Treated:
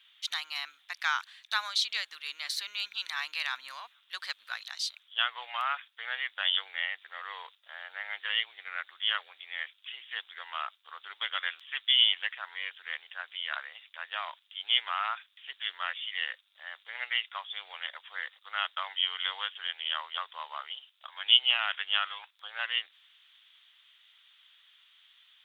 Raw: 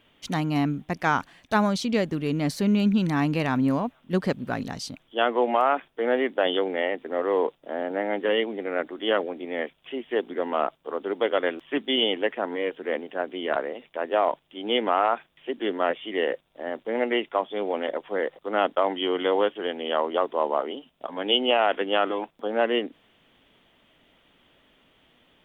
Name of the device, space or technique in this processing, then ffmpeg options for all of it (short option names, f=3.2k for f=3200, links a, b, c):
headphones lying on a table: -af "highpass=f=1.3k:w=0.5412,highpass=f=1.3k:w=1.3066,equalizer=f=3.8k:t=o:w=0.52:g=11.5,volume=-2dB"